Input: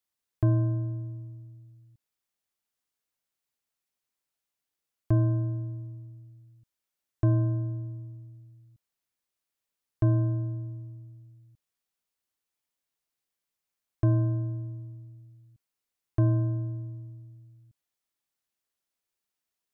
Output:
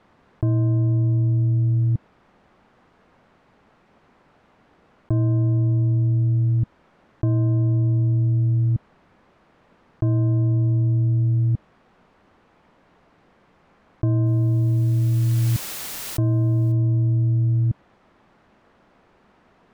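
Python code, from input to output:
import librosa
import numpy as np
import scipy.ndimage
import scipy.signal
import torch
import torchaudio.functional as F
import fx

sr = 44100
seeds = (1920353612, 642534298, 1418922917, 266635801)

y = scipy.signal.sosfilt(scipy.signal.butter(2, 1200.0, 'lowpass', fs=sr, output='sos'), x)
y = fx.peak_eq(y, sr, hz=200.0, db=5.0, octaves=0.87)
y = fx.quant_dither(y, sr, seeds[0], bits=12, dither='triangular', at=(14.26, 16.72))
y = fx.env_flatten(y, sr, amount_pct=100)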